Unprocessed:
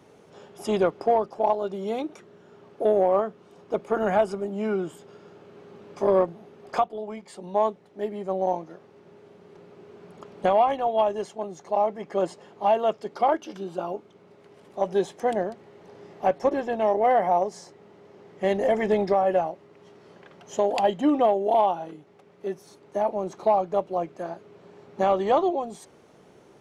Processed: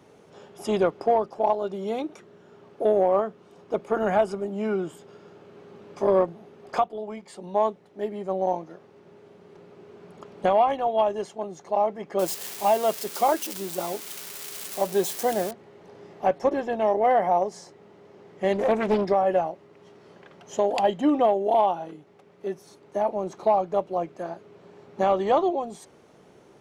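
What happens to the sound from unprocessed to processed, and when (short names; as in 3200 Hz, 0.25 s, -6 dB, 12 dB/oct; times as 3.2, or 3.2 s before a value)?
12.19–15.51 switching spikes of -23 dBFS
18.53–19.05 Doppler distortion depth 0.5 ms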